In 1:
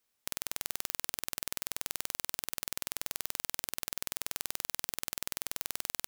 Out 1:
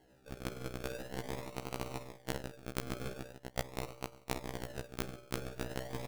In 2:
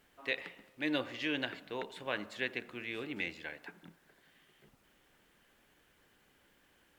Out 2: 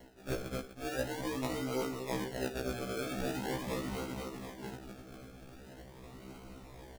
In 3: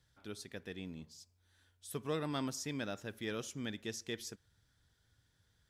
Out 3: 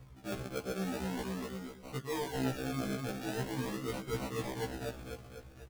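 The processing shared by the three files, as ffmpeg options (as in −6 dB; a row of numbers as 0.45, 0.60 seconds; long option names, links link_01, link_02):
-filter_complex "[0:a]bandreject=frequency=570:width=12,aphaser=in_gain=1:out_gain=1:delay=2.3:decay=0.25:speed=0.64:type=sinusoidal,aecho=1:1:249|498|747|996|1245|1494|1743:0.501|0.266|0.141|0.0746|0.0395|0.021|0.0111,asplit=2[link_01][link_02];[link_02]adynamicsmooth=sensitivity=1.5:basefreq=860,volume=0dB[link_03];[link_01][link_03]amix=inputs=2:normalize=0,bandreject=frequency=50:width_type=h:width=6,bandreject=frequency=100:width_type=h:width=6,bandreject=frequency=150:width_type=h:width=6,acrusher=samples=36:mix=1:aa=0.000001:lfo=1:lforange=21.6:lforate=0.43,areverse,acompressor=threshold=-47dB:ratio=12,areverse,afftfilt=real='re*1.73*eq(mod(b,3),0)':imag='im*1.73*eq(mod(b,3),0)':win_size=2048:overlap=0.75,volume=16dB"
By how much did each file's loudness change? 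−6.5, 0.0, +3.5 LU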